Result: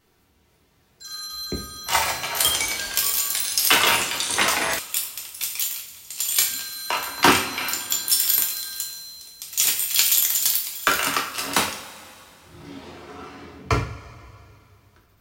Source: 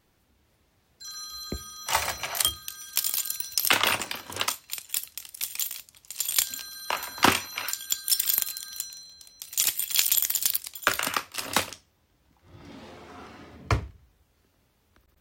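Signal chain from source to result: two-slope reverb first 0.4 s, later 2.7 s, from -18 dB, DRR -1.5 dB; 2.27–4.79 echoes that change speed 85 ms, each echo -6 st, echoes 3, each echo -6 dB; gain +1.5 dB

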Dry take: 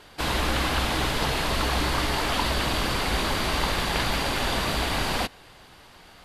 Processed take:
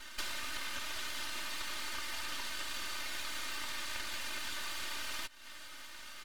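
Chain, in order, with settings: inverse Chebyshev high-pass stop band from 460 Hz, stop band 50 dB; half-wave rectifier; comb 3.3 ms, depth 98%; compressor 8:1, threshold -40 dBFS, peak gain reduction 16.5 dB; gain +4.5 dB

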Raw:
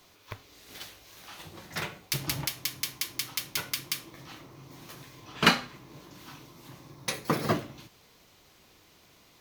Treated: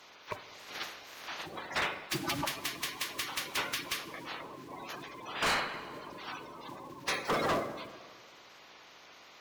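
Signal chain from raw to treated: bin magnitudes rounded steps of 30 dB; overdrive pedal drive 23 dB, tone 1900 Hz, clips at -5 dBFS; on a send at -13 dB: reverb RT60 1.7 s, pre-delay 8 ms; on the sum: hard clip -20 dBFS, distortion -8 dB; gain -7 dB

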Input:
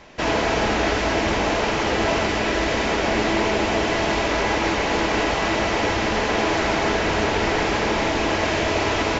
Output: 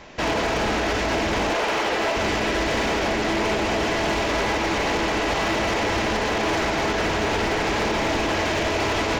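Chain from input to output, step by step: 1.53–2.16 tone controls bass -14 dB, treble -3 dB; limiter -15 dBFS, peak gain reduction 6.5 dB; overloaded stage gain 21 dB; gain +2.5 dB

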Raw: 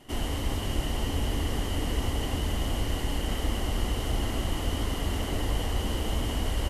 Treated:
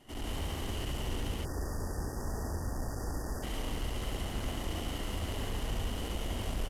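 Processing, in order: soft clip -31 dBFS, distortion -9 dB; loudspeakers at several distances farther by 24 m -1 dB, 49 m -1 dB, 62 m 0 dB; spectral delete 1.44–3.43, 1900–4600 Hz; gain -6.5 dB

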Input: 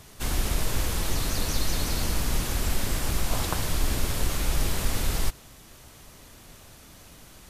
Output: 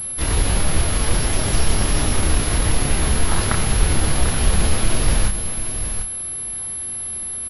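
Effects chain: pitch shift +4.5 st; doubler 29 ms -5 dB; on a send: echo 0.744 s -9.5 dB; on the sum: pulse-width modulation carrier 11000 Hz; gain +7 dB

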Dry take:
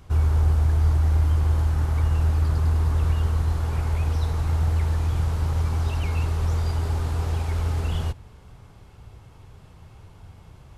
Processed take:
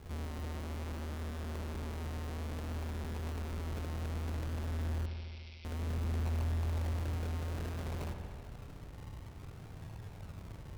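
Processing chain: rattling part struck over -28 dBFS, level -18 dBFS; decimation with a swept rate 35×, swing 60% 0.58 Hz; tube stage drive 40 dB, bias 0.6; vibrato 5.2 Hz 12 cents; 5.06–5.65 Chebyshev band-pass 2100–5600 Hz, order 5; on a send: dark delay 74 ms, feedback 80%, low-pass 3300 Hz, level -9.5 dB; on the sum: gain +1.5 dB

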